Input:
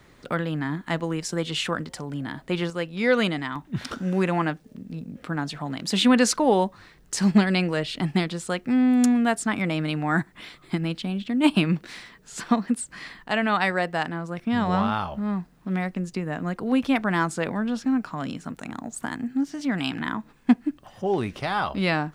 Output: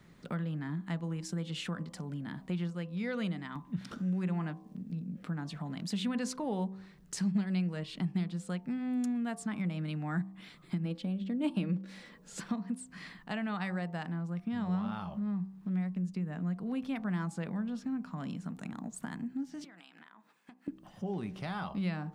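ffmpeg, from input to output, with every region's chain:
-filter_complex "[0:a]asettb=1/sr,asplit=3[s0][s1][s2];[s0]atrim=end=10.854[s3];[s1]atrim=start=10.85:end=12.4,asetpts=PTS-STARTPTS,afade=t=in:d=0.004:c=qsin,afade=t=out:st=1.546:d=0.004:c=qsin,equalizer=f=500:t=o:w=0.81:g=10.5,aecho=1:1:3.6:0.34,atrim=end_sample=68355[s4];[s2]atrim=start=12.396[s5];[s3][s4]acrossfade=d=0.004:c1=hsin:c2=qsin[s6];[s6][s5]acrossfade=d=0.004:c1=qsin:c2=hsin,asettb=1/sr,asplit=3[s7][s8][s9];[s7]atrim=end=19.644[s10];[s8]atrim=start=19.64:end=20.68,asetpts=PTS-STARTPTS,afade=t=in:d=0.004:c=qsin,afade=t=out:st=1.036:d=0.004:c=qsin,highpass=600,acompressor=threshold=0.00631:ratio=8:attack=3.2:release=140:knee=1:detection=peak[s11];[s9]atrim=start=20.676[s12];[s10][s11]acrossfade=d=0.004:c1=hsin:c2=qsin[s13];[s13][s12]acrossfade=d=0.004:c1=qsin:c2=hsin,equalizer=f=180:t=o:w=0.6:g=14,bandreject=f=63.77:t=h:w=4,bandreject=f=127.54:t=h:w=4,bandreject=f=191.31:t=h:w=4,bandreject=f=255.08:t=h:w=4,bandreject=f=318.85:t=h:w=4,bandreject=f=382.62:t=h:w=4,bandreject=f=446.39:t=h:w=4,bandreject=f=510.16:t=h:w=4,bandreject=f=573.93:t=h:w=4,bandreject=f=637.7:t=h:w=4,bandreject=f=701.47:t=h:w=4,bandreject=f=765.24:t=h:w=4,bandreject=f=829.01:t=h:w=4,bandreject=f=892.78:t=h:w=4,bandreject=f=956.55:t=h:w=4,bandreject=f=1020.32:t=h:w=4,bandreject=f=1084.09:t=h:w=4,bandreject=f=1147.86:t=h:w=4,bandreject=f=1211.63:t=h:w=4,acompressor=threshold=0.0316:ratio=2,volume=0.376"

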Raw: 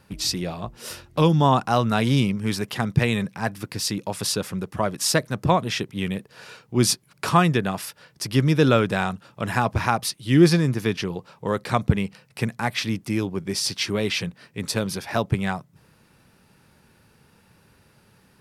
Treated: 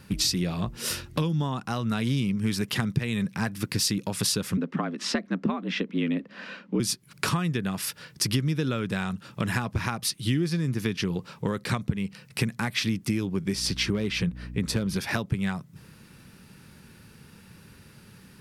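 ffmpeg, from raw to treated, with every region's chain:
-filter_complex "[0:a]asettb=1/sr,asplit=3[s0][s1][s2];[s0]atrim=end=4.574[s3];[s1]atrim=start=4.57:end=6.8,asetpts=PTS-STARTPTS,afade=t=in:d=0.004:c=qsin,afade=t=out:st=2.226:d=0.004:c=qsin,lowpass=2600,afreqshift=71[s4];[s2]atrim=start=6.796[s5];[s3][s4]acrossfade=d=0.004:c1=hsin:c2=qsin[s6];[s6][s5]acrossfade=d=0.004:c1=qsin:c2=hsin,asettb=1/sr,asplit=3[s7][s8][s9];[s7]atrim=end=13.554[s10];[s8]atrim=start=13.55:end=14.96,asetpts=PTS-STARTPTS,afade=t=in:d=0.004:c=qsin,afade=t=out:st=1.406:d=0.004:c=qsin,highshelf=f=2600:g=-9,volume=6.31,asoftclip=hard,volume=0.158,aeval=exprs='val(0)+0.00631*(sin(2*PI*60*n/s)+sin(2*PI*2*60*n/s)/2+sin(2*PI*3*60*n/s)/3+sin(2*PI*4*60*n/s)/4+sin(2*PI*5*60*n/s)/5)':c=same[s11];[s9]atrim=start=14.956[s12];[s10][s11]acrossfade=d=0.004:c1=hsin:c2=qsin[s13];[s13][s12]acrossfade=d=0.004:c1=qsin:c2=hsin,equalizer=f=190:w=1.8:g=3,acompressor=threshold=0.0398:ratio=12,equalizer=f=720:w=1.1:g=-8,volume=2.11"

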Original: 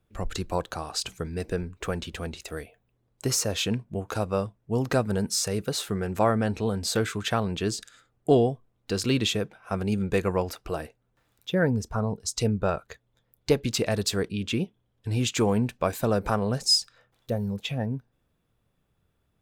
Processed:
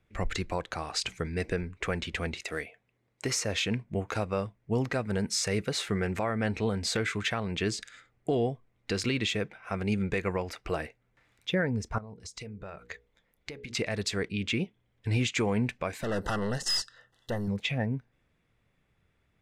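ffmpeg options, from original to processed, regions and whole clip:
-filter_complex "[0:a]asettb=1/sr,asplit=3[s0][s1][s2];[s0]atrim=end=2.344[s3];[s1]atrim=start=2.34:end=3.41,asetpts=PTS-STARTPTS,afade=t=in:d=0.004:c=qsin,afade=t=out:st=1.066:d=0.004:c=qsin,highpass=f=160:p=1,acrusher=bits=7:mode=log:mix=0:aa=0.000001[s4];[s2]atrim=start=3.406[s5];[s3][s4]acrossfade=d=0.004:c1=hsin:c2=qsin[s6];[s6][s5]acrossfade=d=0.004:c1=qsin:c2=hsin,asettb=1/sr,asplit=3[s7][s8][s9];[s7]atrim=end=11.984[s10];[s8]atrim=start=11.98:end=13.75,asetpts=PTS-STARTPTS,afade=t=in:d=0.004:c=qsin,afade=t=out:st=1.766:d=0.004:c=qsin,bandreject=f=60:t=h:w=6,bandreject=f=120:t=h:w=6,bandreject=f=180:t=h:w=6,bandreject=f=240:t=h:w=6,bandreject=f=300:t=h:w=6,bandreject=f=360:t=h:w=6,bandreject=f=420:t=h:w=6,bandreject=f=480:t=h:w=6,acompressor=threshold=0.01:ratio=6:attack=3.2:release=140:knee=1:detection=peak[s11];[s9]atrim=start=13.746[s12];[s10][s11]acrossfade=d=0.004:c1=hsin:c2=qsin[s13];[s13][s12]acrossfade=d=0.004:c1=qsin:c2=hsin,asettb=1/sr,asplit=3[s14][s15][s16];[s14]atrim=end=16.034[s17];[s15]atrim=start=16.03:end=17.48,asetpts=PTS-STARTPTS,afade=t=in:d=0.004:c=qsin,afade=t=out:st=1.446:d=0.004:c=qsin,highshelf=f=3600:g=7,aeval=exprs='(tanh(20*val(0)+0.45)-tanh(0.45))/20':c=same,asuperstop=centerf=2300:order=12:qfactor=3.8[s18];[s16]atrim=start=17.476[s19];[s17][s18]acrossfade=d=0.004:c1=hsin:c2=qsin[s20];[s20][s19]acrossfade=d=0.004:c1=qsin:c2=hsin,equalizer=f=2100:w=2.5:g=11.5,alimiter=limit=0.119:level=0:latency=1:release=329,lowpass=8300"

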